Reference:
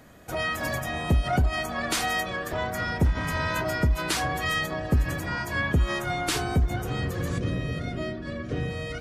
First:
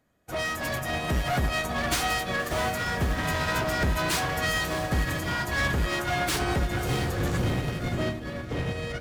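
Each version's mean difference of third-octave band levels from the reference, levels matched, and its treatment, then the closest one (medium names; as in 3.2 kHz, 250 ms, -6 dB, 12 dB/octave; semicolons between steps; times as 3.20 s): 5.0 dB: overload inside the chain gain 30 dB; echo that smears into a reverb 618 ms, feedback 45%, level -8 dB; upward expansion 2.5:1, over -47 dBFS; trim +7.5 dB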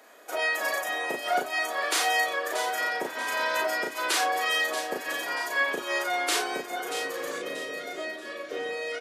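10.0 dB: high-pass 390 Hz 24 dB/octave; doubling 36 ms -2.5 dB; on a send: feedback echo behind a high-pass 633 ms, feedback 36%, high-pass 2.5 kHz, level -9 dB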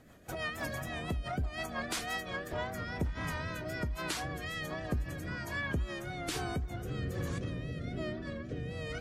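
2.5 dB: compression 5:1, threshold -26 dBFS, peak gain reduction 8 dB; vibrato 3.8 Hz 52 cents; rotary cabinet horn 6 Hz, later 1.2 Hz, at 1.99 s; trim -4.5 dB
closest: third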